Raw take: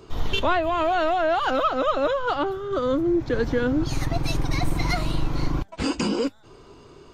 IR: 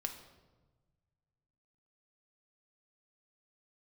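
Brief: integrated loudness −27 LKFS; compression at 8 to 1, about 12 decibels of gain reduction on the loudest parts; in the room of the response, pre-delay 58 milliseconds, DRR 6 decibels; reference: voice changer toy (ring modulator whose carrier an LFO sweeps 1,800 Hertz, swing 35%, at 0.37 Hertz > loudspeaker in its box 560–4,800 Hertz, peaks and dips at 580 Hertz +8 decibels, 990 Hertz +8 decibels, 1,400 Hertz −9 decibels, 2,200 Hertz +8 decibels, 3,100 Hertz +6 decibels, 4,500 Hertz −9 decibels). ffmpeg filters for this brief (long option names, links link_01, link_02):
-filter_complex "[0:a]acompressor=threshold=-30dB:ratio=8,asplit=2[link_01][link_02];[1:a]atrim=start_sample=2205,adelay=58[link_03];[link_02][link_03]afir=irnorm=-1:irlink=0,volume=-5.5dB[link_04];[link_01][link_04]amix=inputs=2:normalize=0,aeval=exprs='val(0)*sin(2*PI*1800*n/s+1800*0.35/0.37*sin(2*PI*0.37*n/s))':channel_layout=same,highpass=560,equalizer=frequency=580:width_type=q:width=4:gain=8,equalizer=frequency=990:width_type=q:width=4:gain=8,equalizer=frequency=1400:width_type=q:width=4:gain=-9,equalizer=frequency=2200:width_type=q:width=4:gain=8,equalizer=frequency=3100:width_type=q:width=4:gain=6,equalizer=frequency=4500:width_type=q:width=4:gain=-9,lowpass=frequency=4800:width=0.5412,lowpass=frequency=4800:width=1.3066,volume=1dB"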